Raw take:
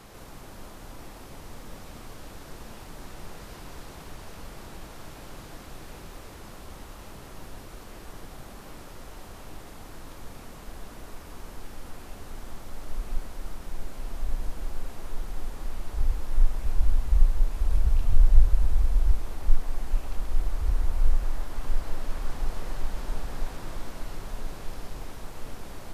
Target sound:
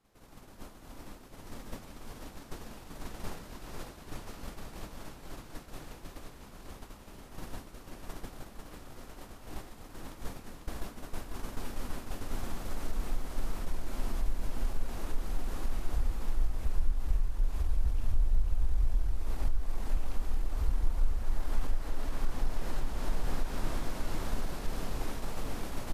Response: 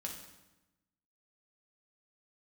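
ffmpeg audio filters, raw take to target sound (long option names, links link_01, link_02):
-filter_complex "[0:a]agate=range=-33dB:threshold=-31dB:ratio=3:detection=peak,equalizer=frequency=250:width=2.1:gain=3.5,acompressor=threshold=-35dB:ratio=3,atempo=1,asplit=2[link_01][link_02];[link_02]aecho=0:1:496:0.531[link_03];[link_01][link_03]amix=inputs=2:normalize=0,volume=7dB"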